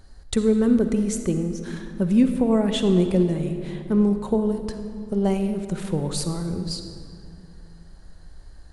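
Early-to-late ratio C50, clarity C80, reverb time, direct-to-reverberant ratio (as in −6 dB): 7.5 dB, 8.5 dB, 2.5 s, 7.0 dB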